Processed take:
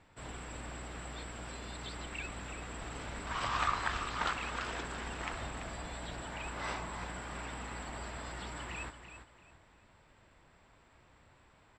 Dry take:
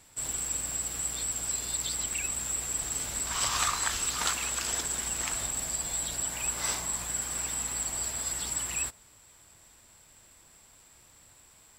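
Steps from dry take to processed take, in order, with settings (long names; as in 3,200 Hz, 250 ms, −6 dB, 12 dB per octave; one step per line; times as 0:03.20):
low-pass filter 2,200 Hz 12 dB per octave
on a send: repeating echo 337 ms, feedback 27%, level −10 dB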